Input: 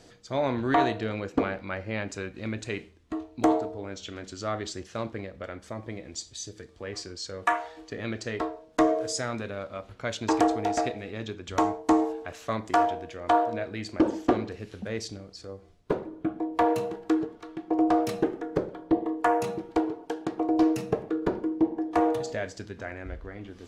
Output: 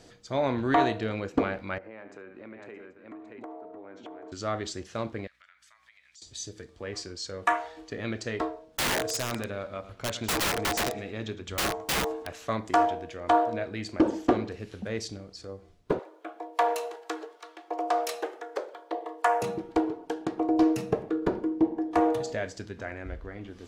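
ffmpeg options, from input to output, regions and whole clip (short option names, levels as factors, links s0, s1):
-filter_complex "[0:a]asettb=1/sr,asplit=3[s0][s1][s2];[s0]atrim=end=1.784[s3];[s1]atrim=start=1.78:end=4.32,asetpts=PTS-STARTPTS,afade=t=in:d=0.004:c=qsin,afade=t=out:st=2.536:d=0.004:c=qsin,acrossover=split=240 2100:gain=0.1 1 0.0708[s4][s5][s6];[s4][s5][s6]amix=inputs=3:normalize=0,aecho=1:1:72|622|784:0.178|0.335|0.106,atrim=end_sample=112014,acompressor=threshold=0.00891:ratio=5:attack=3.2:release=140:knee=1:detection=peak[s7];[s2]atrim=start=4.316[s8];[s3][s7]acrossfade=d=0.004:c1=hsin:c2=qsin[s9];[s9][s8]acrossfade=d=0.004:c1=qsin:c2=hsin,asettb=1/sr,asplit=3[s10][s11][s12];[s10]atrim=end=5.274[s13];[s11]atrim=start=5.27:end=6.22,asetpts=PTS-STARTPTS,afade=t=in:d=0.004:c=qsin,afade=t=out:st=0.946:d=0.004:c=qsin,highpass=f=1400:w=0.5412,highpass=f=1400:w=1.3066,aeval=exprs='val(0)+0.000126*(sin(2*PI*60*n/s)+sin(2*PI*2*60*n/s)/2+sin(2*PI*3*60*n/s)/3+sin(2*PI*4*60*n/s)/4+sin(2*PI*5*60*n/s)/5)':c=same,acompressor=threshold=0.00141:ratio=3:attack=3.2:release=140:knee=1:detection=peak[s14];[s12]atrim=start=6.216[s15];[s13][s14]acrossfade=d=0.004:c1=hsin:c2=qsin[s16];[s16][s15]acrossfade=d=0.004:c1=qsin:c2=hsin,asettb=1/sr,asplit=3[s17][s18][s19];[s17]atrim=end=8.684[s20];[s18]atrim=start=8.68:end=12.28,asetpts=PTS-STARTPTS,afade=t=in:d=0.004:c=qsin,afade=t=out:st=3.596:d=0.004:c=qsin,aecho=1:1:109|218|327:0.178|0.0445|0.0111,atrim=end_sample=158760,aeval=exprs='(mod(12.6*val(0)+1,2)-1)/12.6':c=same[s21];[s19]atrim=start=12.276[s22];[s20][s21]acrossfade=d=0.004:c1=hsin:c2=qsin[s23];[s23][s22]acrossfade=d=0.004:c1=qsin:c2=hsin,asettb=1/sr,asplit=3[s24][s25][s26];[s24]atrim=end=15.994[s27];[s25]atrim=start=15.99:end=19.42,asetpts=PTS-STARTPTS,afade=t=in:d=0.004:c=qsin,afade=t=out:st=3.426:d=0.004:c=qsin,highpass=f=510:w=0.5412,highpass=f=510:w=1.3066,highshelf=f=3300:g=6[s28];[s26]atrim=start=19.416[s29];[s27][s28]acrossfade=d=0.004:c1=hsin:c2=qsin[s30];[s30][s29]acrossfade=d=0.004:c1=qsin:c2=hsin"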